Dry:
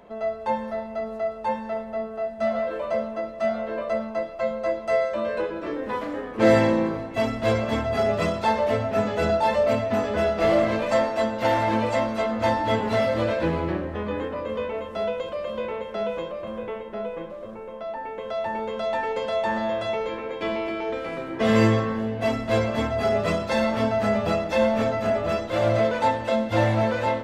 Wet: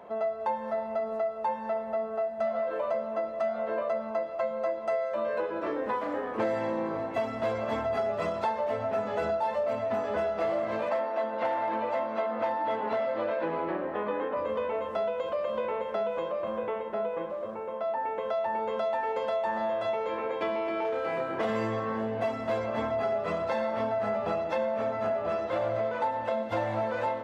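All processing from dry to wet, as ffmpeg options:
-filter_complex "[0:a]asettb=1/sr,asplit=3[a][b][c];[a]atrim=end=10.894[d];[b]atrim=start=10.89:end=14.37,asetpts=PTS-STARTPTS,afade=t=in:d=0.004:c=qsin,afade=t=out:st=3.476:d=0.004:c=qsin,highpass=210,lowpass=3.6k,asoftclip=type=hard:threshold=-15.5dB[e];[c]atrim=start=14.366[f];[d][e]acrossfade=d=0.004:c1=hsin:c2=qsin[g];[g][f]acrossfade=d=0.004:c1=qsin:c2=hsin,asettb=1/sr,asplit=3[h][i][j];[h]atrim=end=20.824[k];[i]atrim=start=20.82:end=21.45,asetpts=PTS-STARTPTS,afade=t=in:d=0.004:c=qsin,afade=t=out:st=0.626:d=0.004:c=qsin,asplit=2[l][m];[m]adelay=29,volume=-2.5dB[n];[l][n]amix=inputs=2:normalize=0,atrim=end_sample=27783,asoftclip=type=hard:threshold=-20.5dB[o];[j]atrim=start=21.446[p];[k][o]acrossfade=d=0.004:c1=hsin:c2=qsin[q];[q][p]acrossfade=d=0.004:c1=qsin:c2=hsin,asettb=1/sr,asplit=3[r][s][t];[r]atrim=end=22.664[u];[s]atrim=start=22.66:end=26.43,asetpts=PTS-STARTPTS,afade=t=in:d=0.004:c=qsin,afade=t=out:st=3.766:d=0.004:c=qsin,highshelf=f=6.1k:g=-7.5,aecho=1:1:89:0.282,atrim=end_sample=166257[v];[t]atrim=start=26.426[w];[u][v]acrossfade=d=0.004:c1=hsin:c2=qsin[x];[x][w]acrossfade=d=0.004:c1=qsin:c2=hsin,highpass=68,equalizer=f=870:w=0.51:g=10.5,acompressor=threshold=-21dB:ratio=6,volume=-6dB"

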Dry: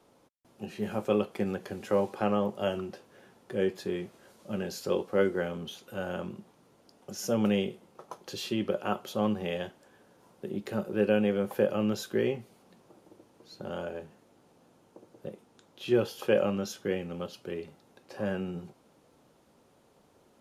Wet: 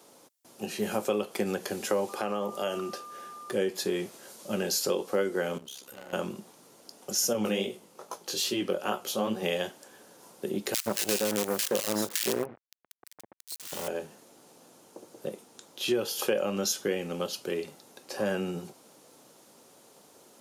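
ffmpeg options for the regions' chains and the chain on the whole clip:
-filter_complex "[0:a]asettb=1/sr,asplit=3[a][b][c];[a]atrim=end=2.094[d];[b]atrim=start=2.09:end=3.52,asetpts=PTS-STARTPTS,afade=t=in:d=0.004:c=qsin,afade=t=out:st=1.426:d=0.004:c=qsin,lowshelf=f=81:g=-10.5,acompressor=threshold=-34dB:ratio=2.5:attack=3.2:release=140:knee=1:detection=peak,aeval=exprs='val(0)+0.00398*sin(2*PI*1200*n/s)':c=same[e];[c]atrim=start=3.516[f];[d][e]acrossfade=d=0.004:c1=hsin:c2=qsin[g];[g][f]acrossfade=d=0.004:c1=qsin:c2=hsin,asettb=1/sr,asplit=3[h][i][j];[h]atrim=end=5.584[k];[i]atrim=start=5.58:end=6.13,asetpts=PTS-STARTPTS,afade=t=in:d=0.004:c=qsin,afade=t=out:st=0.546:d=0.004:c=qsin,tremolo=f=67:d=0.824,acompressor=threshold=-52dB:ratio=2:attack=3.2:release=140:knee=1:detection=peak,aeval=exprs='clip(val(0),-1,0.00211)':c=same[l];[j]atrim=start=6.126[m];[k][l]acrossfade=d=0.004:c1=hsin:c2=qsin[n];[n][m]acrossfade=d=0.004:c1=qsin:c2=hsin,asettb=1/sr,asplit=3[o][p][q];[o]atrim=end=7.334[r];[p]atrim=start=7.33:end=9.43,asetpts=PTS-STARTPTS,afade=t=in:d=0.004:c=qsin,afade=t=out:st=2.096:d=0.004:c=qsin,bandreject=f=50:t=h:w=6,bandreject=f=100:t=h:w=6,flanger=delay=15.5:depth=7.7:speed=2.4[s];[q]atrim=start=9.426[t];[r][s]acrossfade=d=0.004:c1=hsin:c2=qsin[u];[u][t]acrossfade=d=0.004:c1=qsin:c2=hsin,asettb=1/sr,asplit=3[v][w][x];[v]atrim=end=10.744[y];[w]atrim=start=10.74:end=13.88,asetpts=PTS-STARTPTS,afade=t=in:d=0.004:c=qsin,afade=t=out:st=3.136:d=0.004:c=qsin,bandreject=f=780:w=5.8,acrusher=bits=5:dc=4:mix=0:aa=0.000001,acrossover=split=1700[z][aa];[z]adelay=120[ab];[ab][aa]amix=inputs=2:normalize=0,atrim=end_sample=138474[ac];[x]atrim=start=13.876[ad];[y][ac]acrossfade=d=0.004:c1=hsin:c2=qsin[ae];[ae][ad]acrossfade=d=0.004:c1=qsin:c2=hsin,highpass=130,bass=f=250:g=-5,treble=f=4k:g=11,acompressor=threshold=-30dB:ratio=6,volume=6dB"

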